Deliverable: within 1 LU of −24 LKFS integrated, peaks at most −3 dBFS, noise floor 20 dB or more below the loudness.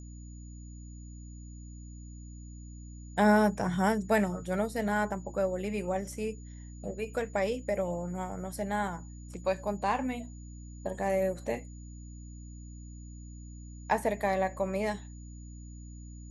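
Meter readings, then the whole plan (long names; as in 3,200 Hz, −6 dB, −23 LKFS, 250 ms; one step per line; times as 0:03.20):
mains hum 60 Hz; hum harmonics up to 300 Hz; level of the hum −43 dBFS; interfering tone 6,900 Hz; level of the tone −57 dBFS; integrated loudness −31.5 LKFS; sample peak −14.0 dBFS; target loudness −24.0 LKFS
→ hum removal 60 Hz, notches 5
notch filter 6,900 Hz, Q 30
level +7.5 dB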